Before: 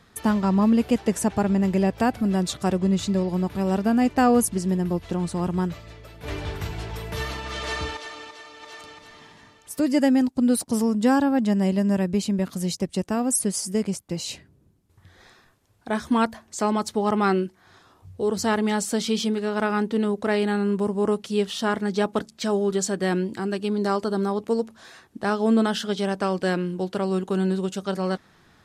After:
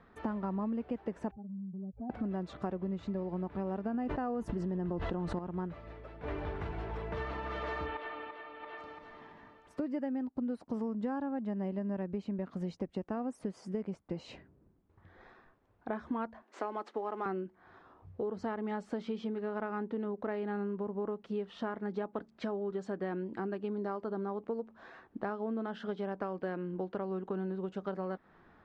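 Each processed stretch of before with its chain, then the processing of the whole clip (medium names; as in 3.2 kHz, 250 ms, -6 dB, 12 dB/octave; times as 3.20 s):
1.31–2.10 s: spectral contrast enhancement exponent 3.2 + compression 4:1, threshold -37 dBFS + three bands expanded up and down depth 70%
3.94–5.39 s: band-stop 2.3 kHz, Q 10 + level flattener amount 100%
7.86–8.78 s: low-pass 9.8 kHz + resonant high shelf 4.5 kHz -12 dB, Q 1.5
16.42–17.26 s: CVSD coder 64 kbps + high-pass 290 Hz 24 dB/octave + peaking EQ 500 Hz -2.5 dB 2.8 oct
whole clip: low-pass 1.5 kHz 12 dB/octave; peaking EQ 110 Hz -8 dB 1.4 oct; compression 6:1, threshold -32 dBFS; trim -1.5 dB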